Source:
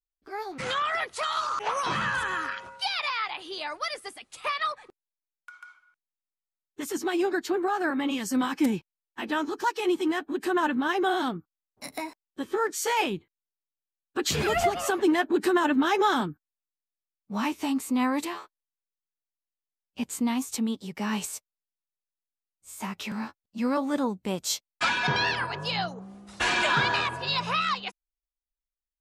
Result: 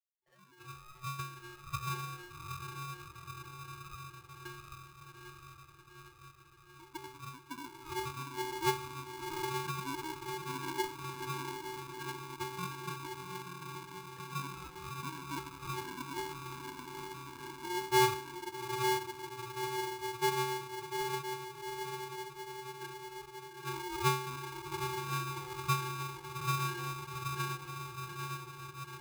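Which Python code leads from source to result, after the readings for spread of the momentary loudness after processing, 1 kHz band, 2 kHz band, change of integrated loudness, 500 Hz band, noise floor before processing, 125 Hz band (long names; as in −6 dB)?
15 LU, −8.0 dB, −12.0 dB, −11.0 dB, −10.0 dB, below −85 dBFS, 0.0 dB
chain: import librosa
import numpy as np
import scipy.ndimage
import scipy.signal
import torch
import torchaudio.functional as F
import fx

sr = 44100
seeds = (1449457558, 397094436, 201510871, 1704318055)

p1 = fx.spec_ripple(x, sr, per_octave=0.78, drift_hz=-1.3, depth_db=23)
p2 = fx.rider(p1, sr, range_db=3, speed_s=0.5)
p3 = p1 + F.gain(torch.from_numpy(p2), -1.5).numpy()
p4 = fx.auto_wah(p3, sr, base_hz=440.0, top_hz=1200.0, q=3.6, full_db=-14.0, direction='down')
p5 = scipy.signal.sosfilt(scipy.signal.butter(2, 140.0, 'highpass', fs=sr, output='sos'), p4)
p6 = fx.peak_eq(p5, sr, hz=340.0, db=12.5, octaves=2.4)
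p7 = fx.octave_resonator(p6, sr, note='B', decay_s=0.52)
p8 = p7 + fx.echo_diffused(p7, sr, ms=776, feedback_pct=68, wet_db=-4.0, dry=0)
p9 = p8 * np.sign(np.sin(2.0 * np.pi * 630.0 * np.arange(len(p8)) / sr))
y = F.gain(torch.from_numpy(p9), -4.0).numpy()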